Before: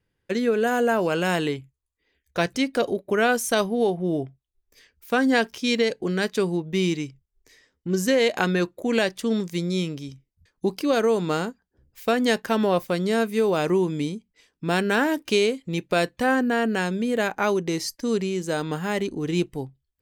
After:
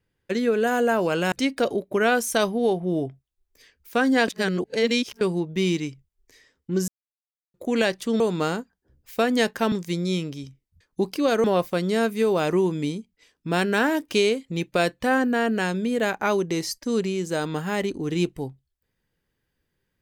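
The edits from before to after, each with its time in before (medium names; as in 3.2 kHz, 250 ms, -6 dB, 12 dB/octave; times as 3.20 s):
1.32–2.49 s: delete
5.45–6.38 s: reverse
8.05–8.71 s: mute
11.09–12.61 s: move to 9.37 s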